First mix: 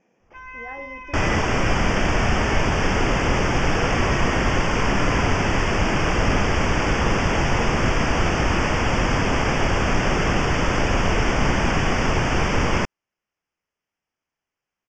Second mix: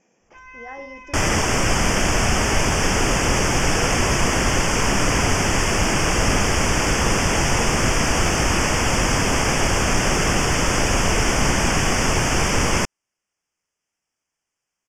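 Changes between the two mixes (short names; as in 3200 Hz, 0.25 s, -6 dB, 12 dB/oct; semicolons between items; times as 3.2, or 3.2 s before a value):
first sound -5.5 dB; master: remove air absorption 170 m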